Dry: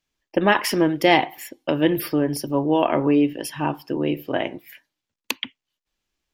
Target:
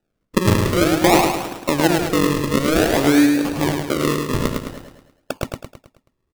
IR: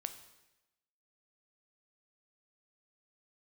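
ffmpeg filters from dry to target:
-filter_complex "[0:a]asplit=2[s0][s1];[s1]acompressor=threshold=0.0562:ratio=6,volume=1.12[s2];[s0][s2]amix=inputs=2:normalize=0,acrusher=samples=40:mix=1:aa=0.000001:lfo=1:lforange=40:lforate=0.53,aecho=1:1:107|214|321|428|535|642:0.596|0.28|0.132|0.0618|0.0291|0.0137,volume=0.891"

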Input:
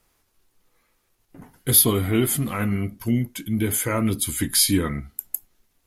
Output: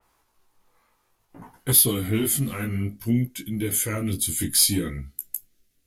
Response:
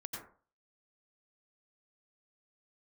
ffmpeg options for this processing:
-af "asetnsamples=n=441:p=0,asendcmd='1.71 equalizer g -8;3.95 equalizer g -15',equalizer=f=950:w=1.4:g=9.5,asoftclip=type=tanh:threshold=0.335,flanger=delay=15:depth=7.5:speed=0.58,adynamicequalizer=threshold=0.01:dfrequency=3500:dqfactor=0.7:tfrequency=3500:tqfactor=0.7:attack=5:release=100:ratio=0.375:range=2:mode=boostabove:tftype=highshelf,volume=1.12"

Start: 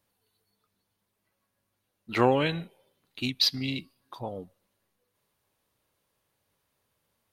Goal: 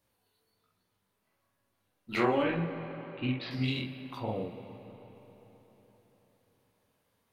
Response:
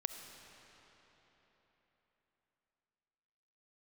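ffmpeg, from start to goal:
-filter_complex "[0:a]asettb=1/sr,asplit=3[s0][s1][s2];[s0]atrim=end=2.424[s3];[s1]atrim=start=2.42:end=3.51,asetpts=PTS-STARTPTS,afade=t=in:d=0.004:c=qsin,afade=t=out:st=1.086:d=0.004:c=qsin,lowpass=f=2400:w=0.5412,lowpass=f=2400:w=1.3066[s4];[s2]atrim=start=3.506[s5];[s3][s4]acrossfade=d=0.004:c1=hsin:c2=qsin[s6];[s6][s5]acrossfade=d=0.004:c1=qsin:c2=hsin,acompressor=threshold=0.0501:ratio=2.5,flanger=delay=16.5:depth=7.8:speed=1.2,asplit=2[s7][s8];[1:a]atrim=start_sample=2205,lowpass=3000,adelay=47[s9];[s8][s9]afir=irnorm=-1:irlink=0,volume=1.06[s10];[s7][s10]amix=inputs=2:normalize=0,volume=1.19"

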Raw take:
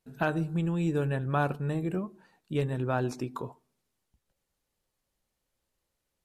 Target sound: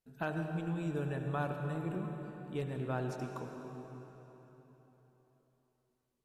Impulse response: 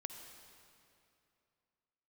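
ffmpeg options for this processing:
-filter_complex "[1:a]atrim=start_sample=2205,asetrate=28224,aresample=44100[s0];[0:a][s0]afir=irnorm=-1:irlink=0,volume=0.447"

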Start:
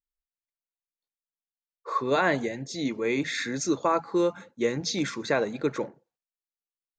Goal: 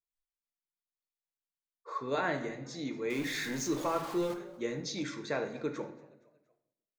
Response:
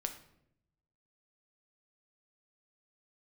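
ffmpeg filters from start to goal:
-filter_complex "[0:a]asettb=1/sr,asplit=3[s0][s1][s2];[s0]atrim=end=3.104[s3];[s1]atrim=start=3.1:end=4.34,asetpts=PTS-STARTPTS,afade=t=in:d=0.004:c=qsin,afade=t=out:st=1.236:d=0.004:c=qsin,aeval=exprs='val(0)+0.5*0.0335*sgn(val(0))':c=same[s4];[s2]atrim=start=4.336[s5];[s3][s4]acrossfade=d=0.004:c1=hsin:c2=qsin[s6];[s6][s5]acrossfade=d=0.004:c1=qsin:c2=hsin,asplit=4[s7][s8][s9][s10];[s8]adelay=233,afreqshift=48,volume=0.0794[s11];[s9]adelay=466,afreqshift=96,volume=0.0343[s12];[s10]adelay=699,afreqshift=144,volume=0.0146[s13];[s7][s11][s12][s13]amix=inputs=4:normalize=0[s14];[1:a]atrim=start_sample=2205[s15];[s14][s15]afir=irnorm=-1:irlink=0,volume=0.376"

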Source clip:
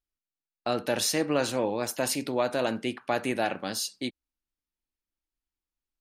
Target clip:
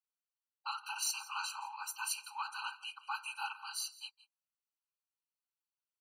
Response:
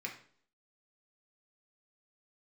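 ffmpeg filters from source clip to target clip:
-af "aecho=1:1:167:0.112,asubboost=boost=10:cutoff=150,afftfilt=real='hypot(re,im)*cos(2*PI*random(0))':imag='hypot(re,im)*sin(2*PI*random(1))':win_size=512:overlap=0.75,afftfilt=real='re*eq(mod(floor(b*sr/1024/790),2),1)':imag='im*eq(mod(floor(b*sr/1024/790),2),1)':win_size=1024:overlap=0.75,volume=1.26"

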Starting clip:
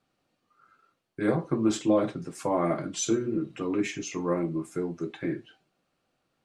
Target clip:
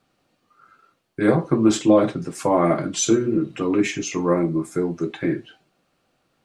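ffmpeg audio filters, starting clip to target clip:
-filter_complex "[0:a]asettb=1/sr,asplit=3[s0][s1][s2];[s0]atrim=end=4.324[s3];[s1]atrim=start=4.32:end=4.85,asetpts=PTS-STARTPTS,afade=t=in:d=0.004:c=qsin,afade=t=out:st=0.526:d=0.004:c=qsin,equalizer=f=2800:t=o:w=0.21:g=-9.5[s4];[s2]atrim=start=4.846[s5];[s3][s4]acrossfade=d=0.004:c1=hsin:c2=qsin[s6];[s6][s5]acrossfade=d=0.004:c1=qsin:c2=hsin,volume=2.51"

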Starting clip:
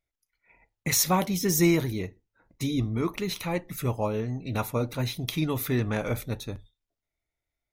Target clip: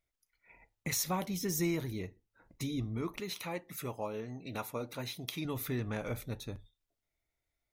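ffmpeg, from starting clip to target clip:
-filter_complex "[0:a]asettb=1/sr,asplit=3[s0][s1][s2];[s0]atrim=end=3.204[s3];[s1]atrim=start=3.2:end=5.45,asetpts=PTS-STARTPTS,afade=t=in:d=0.004:c=qsin,afade=t=out:st=2.246:d=0.004:c=qsin,highpass=f=290:p=1[s4];[s2]atrim=start=5.446[s5];[s3][s4]acrossfade=d=0.004:c1=hsin:c2=qsin[s6];[s6][s5]acrossfade=d=0.004:c1=qsin:c2=hsin,acompressor=threshold=0.00355:ratio=1.5"

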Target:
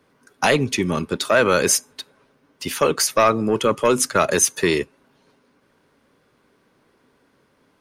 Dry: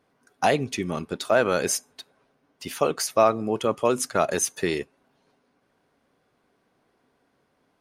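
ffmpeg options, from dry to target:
-filter_complex "[0:a]acrossover=split=100|1100[s0][s1][s2];[s1]asoftclip=type=tanh:threshold=0.126[s3];[s0][s3][s2]amix=inputs=3:normalize=0,equalizer=f=720:w=6.3:g=-10,volume=2.51"

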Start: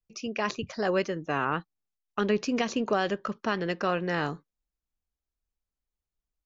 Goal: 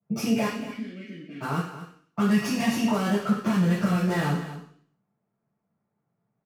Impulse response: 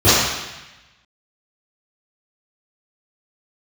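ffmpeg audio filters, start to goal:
-filter_complex "[0:a]acrossover=split=120|820[s0][s1][s2];[s0]acompressor=threshold=0.00112:ratio=4[s3];[s1]acompressor=threshold=0.01:ratio=4[s4];[s2]acompressor=threshold=0.0126:ratio=4[s5];[s3][s4][s5]amix=inputs=3:normalize=0,asettb=1/sr,asplit=3[s6][s7][s8];[s6]atrim=end=2.284[s9];[s7]atrim=start=2.28:end=2.92,asetpts=PTS-STARTPTS,afade=t=in:d=0.004:c=qsin,afade=t=out:st=0.636:d=0.004:c=qsin,aecho=1:1:1.1:0.61,atrim=end_sample=28224[s10];[s8]atrim=start=2.916[s11];[s9][s10]acrossfade=d=0.004:c1=hsin:c2=qsin[s12];[s12][s11]acrossfade=d=0.004:c1=qsin:c2=hsin,acrossover=split=1800[s13][s14];[s13]acompressor=threshold=0.00708:ratio=6[s15];[s14]acrusher=bits=6:dc=4:mix=0:aa=0.000001[s16];[s15][s16]amix=inputs=2:normalize=0,asplit=3[s17][s18][s19];[s17]afade=t=out:st=3.45:d=0.02[s20];[s18]asubboost=boost=3.5:cutoff=170,afade=t=in:st=3.45:d=0.02,afade=t=out:st=3.96:d=0.02[s21];[s19]afade=t=in:st=3.96:d=0.02[s22];[s20][s21][s22]amix=inputs=3:normalize=0,asoftclip=type=tanh:threshold=0.0188,asettb=1/sr,asplit=3[s23][s24][s25];[s23]atrim=end=0.464[s26];[s24]atrim=start=0.46:end=1.41,asetpts=PTS-STARTPTS,afade=t=in:d=0.004:c=qsin,afade=t=out:st=0.946:d=0.004:c=qsin,asplit=3[s27][s28][s29];[s27]bandpass=f=270:t=q:w=8,volume=1[s30];[s28]bandpass=f=2290:t=q:w=8,volume=0.501[s31];[s29]bandpass=f=3010:t=q:w=8,volume=0.355[s32];[s30][s31][s32]amix=inputs=3:normalize=0[s33];[s25]atrim=start=1.406[s34];[s26][s33]acrossfade=d=0.004:c1=hsin:c2=qsin[s35];[s35][s34]acrossfade=d=0.004:c1=qsin:c2=hsin,aecho=1:1:234:0.224[s36];[1:a]atrim=start_sample=2205,asetrate=83790,aresample=44100[s37];[s36][s37]afir=irnorm=-1:irlink=0,volume=0.501"

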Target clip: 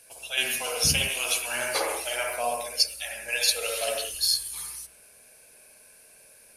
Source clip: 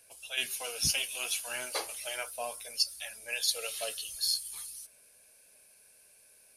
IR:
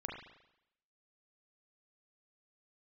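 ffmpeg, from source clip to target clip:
-filter_complex "[1:a]atrim=start_sample=2205,afade=t=out:st=0.19:d=0.01,atrim=end_sample=8820,asetrate=31311,aresample=44100[s0];[0:a][s0]afir=irnorm=-1:irlink=0,volume=2.51"

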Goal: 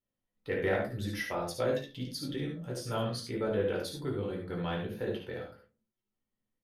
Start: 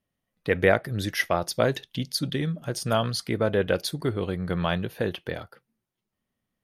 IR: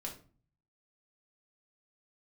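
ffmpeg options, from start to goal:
-filter_complex "[0:a]aecho=1:1:57|71:0.376|0.473[s0];[1:a]atrim=start_sample=2205,asetrate=74970,aresample=44100[s1];[s0][s1]afir=irnorm=-1:irlink=0,asoftclip=type=tanh:threshold=0.224,volume=0.596"

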